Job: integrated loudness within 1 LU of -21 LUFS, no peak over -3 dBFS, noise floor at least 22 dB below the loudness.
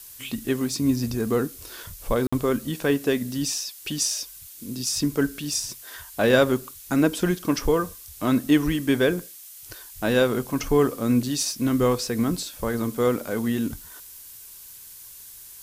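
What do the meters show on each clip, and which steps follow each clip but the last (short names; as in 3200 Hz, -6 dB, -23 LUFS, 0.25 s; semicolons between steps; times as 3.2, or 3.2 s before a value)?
dropouts 1; longest dropout 55 ms; noise floor -44 dBFS; noise floor target -47 dBFS; loudness -24.5 LUFS; peak -5.5 dBFS; loudness target -21.0 LUFS
-> interpolate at 2.27, 55 ms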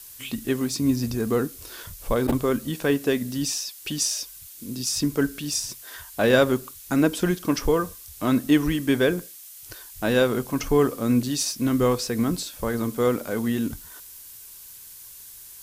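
dropouts 0; noise floor -44 dBFS; noise floor target -46 dBFS
-> noise print and reduce 6 dB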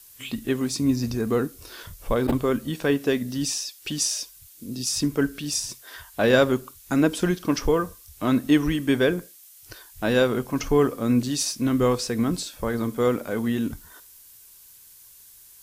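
noise floor -50 dBFS; loudness -24.5 LUFS; peak -5.5 dBFS; loudness target -21.0 LUFS
-> gain +3.5 dB; limiter -3 dBFS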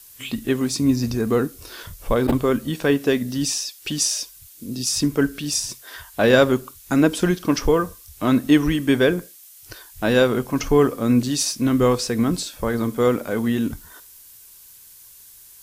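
loudness -21.0 LUFS; peak -3.0 dBFS; noise floor -47 dBFS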